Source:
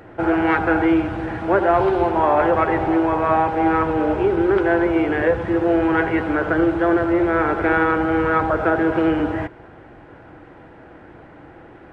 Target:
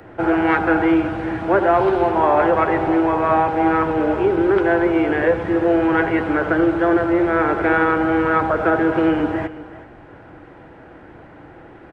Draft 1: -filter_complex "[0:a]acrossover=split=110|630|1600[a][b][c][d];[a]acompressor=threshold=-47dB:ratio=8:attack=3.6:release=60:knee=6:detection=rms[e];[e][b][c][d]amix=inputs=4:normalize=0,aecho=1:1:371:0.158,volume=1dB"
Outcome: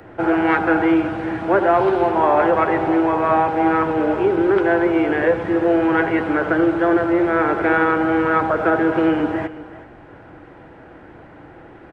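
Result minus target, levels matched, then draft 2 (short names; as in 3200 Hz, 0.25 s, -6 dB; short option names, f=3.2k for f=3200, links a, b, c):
compressor: peak gain reduction +9 dB
-filter_complex "[0:a]acrossover=split=110|630|1600[a][b][c][d];[a]acompressor=threshold=-36.5dB:ratio=8:attack=3.6:release=60:knee=6:detection=rms[e];[e][b][c][d]amix=inputs=4:normalize=0,aecho=1:1:371:0.158,volume=1dB"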